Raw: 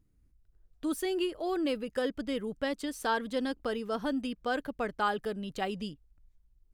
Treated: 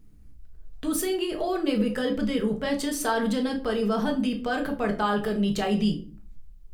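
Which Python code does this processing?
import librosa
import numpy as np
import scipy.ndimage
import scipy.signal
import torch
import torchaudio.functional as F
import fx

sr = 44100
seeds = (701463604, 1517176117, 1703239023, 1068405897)

p1 = fx.over_compress(x, sr, threshold_db=-39.0, ratio=-1.0)
p2 = x + (p1 * librosa.db_to_amplitude(2.0))
y = fx.room_shoebox(p2, sr, seeds[0], volume_m3=310.0, walls='furnished', distance_m=1.5)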